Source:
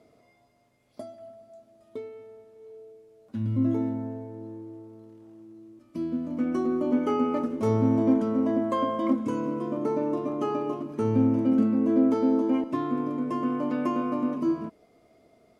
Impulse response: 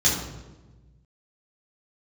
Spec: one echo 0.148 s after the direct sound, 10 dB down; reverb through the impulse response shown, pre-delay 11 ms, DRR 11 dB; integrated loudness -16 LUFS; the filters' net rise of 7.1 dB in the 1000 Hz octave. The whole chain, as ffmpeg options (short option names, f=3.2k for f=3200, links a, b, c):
-filter_complex "[0:a]equalizer=f=1k:t=o:g=8,aecho=1:1:148:0.316,asplit=2[a][b];[1:a]atrim=start_sample=2205,adelay=11[c];[b][c]afir=irnorm=-1:irlink=0,volume=-25.5dB[d];[a][d]amix=inputs=2:normalize=0,volume=8dB"